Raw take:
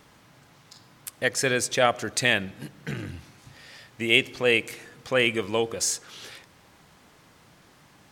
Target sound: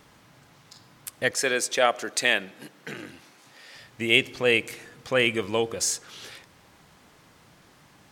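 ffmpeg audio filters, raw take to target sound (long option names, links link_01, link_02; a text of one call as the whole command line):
ffmpeg -i in.wav -filter_complex "[0:a]asettb=1/sr,asplit=3[link_01][link_02][link_03];[link_01]atrim=end=1.314[link_04];[link_02]atrim=start=1.31:end=3.75,asetpts=PTS-STARTPTS,afade=type=in:duration=0.004:curve=qsin,afade=type=out:start_time=2.436:duration=0.004:curve=qsin,highpass=300[link_05];[link_03]atrim=start=3.746[link_06];[link_04][link_05]acrossfade=duration=0.004:curve1=hsin:curve2=qsin[link_07];[link_07][link_06]acrossfade=duration=0.004:curve1=qsin:curve2=hsin" out.wav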